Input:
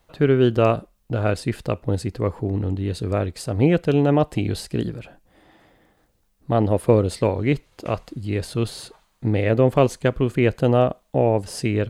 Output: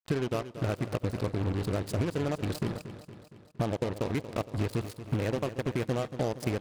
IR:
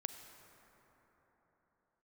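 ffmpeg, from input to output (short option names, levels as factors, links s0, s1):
-filter_complex "[0:a]atempo=1.8,acompressor=threshold=0.0355:ratio=16,acrusher=bits=5:mix=0:aa=0.5,aecho=1:1:232|464|696|928|1160|1392:0.237|0.135|0.077|0.0439|0.025|0.0143,asplit=2[s0][s1];[1:a]atrim=start_sample=2205,afade=t=out:st=0.15:d=0.01,atrim=end_sample=7056,asetrate=29988,aresample=44100[s2];[s1][s2]afir=irnorm=-1:irlink=0,volume=0.335[s3];[s0][s3]amix=inputs=2:normalize=0"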